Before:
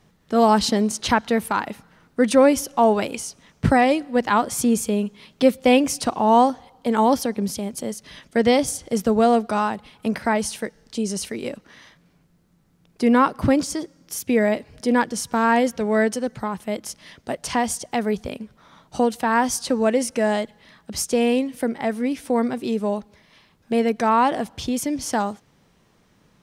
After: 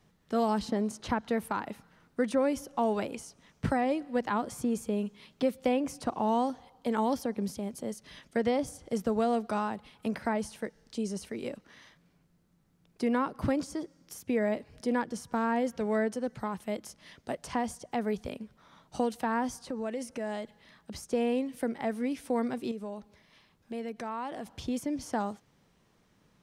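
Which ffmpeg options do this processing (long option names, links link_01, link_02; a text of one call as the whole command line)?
ffmpeg -i in.wav -filter_complex "[0:a]asettb=1/sr,asplit=3[link_01][link_02][link_03];[link_01]atrim=end=19.584[link_04];[link_02]atrim=start=19.58:end=21.03,asetpts=PTS-STARTPTS,afade=type=in:duration=0.004:curve=qsin,afade=type=out:start_time=1.446:duration=0.004:curve=qsin,acompressor=threshold=-27dB:ratio=2.5:attack=3.2:release=140:knee=1:detection=peak[link_05];[link_03]atrim=start=21.026[link_06];[link_04][link_05]acrossfade=duration=0.004:curve1=hsin:curve2=qsin[link_07];[link_07][link_06]acrossfade=duration=0.004:curve1=qsin:curve2=hsin,asettb=1/sr,asplit=3[link_08][link_09][link_10];[link_08]atrim=end=22.714[link_11];[link_09]atrim=start=22.71:end=24.47,asetpts=PTS-STARTPTS,afade=type=in:duration=0.004:curve=qsin,afade=type=out:start_time=1.756:duration=0.004:curve=qsin,acompressor=threshold=-31dB:ratio=2.5:attack=3.2:release=140:knee=1:detection=peak[link_12];[link_10]atrim=start=24.466[link_13];[link_11][link_12]acrossfade=duration=0.004:curve1=hsin:curve2=qsin[link_14];[link_14][link_13]acrossfade=duration=0.004:curve1=qsin:curve2=hsin,acrossover=split=520|1700[link_15][link_16][link_17];[link_15]acompressor=threshold=-20dB:ratio=4[link_18];[link_16]acompressor=threshold=-23dB:ratio=4[link_19];[link_17]acompressor=threshold=-38dB:ratio=4[link_20];[link_18][link_19][link_20]amix=inputs=3:normalize=0,volume=-7.5dB" out.wav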